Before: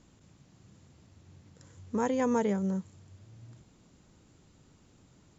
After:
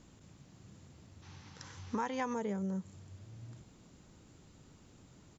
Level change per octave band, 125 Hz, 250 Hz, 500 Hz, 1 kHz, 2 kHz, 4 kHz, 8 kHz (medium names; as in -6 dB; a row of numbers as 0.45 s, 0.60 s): -4.5 dB, -7.5 dB, -9.0 dB, -3.5 dB, -2.5 dB, +0.5 dB, no reading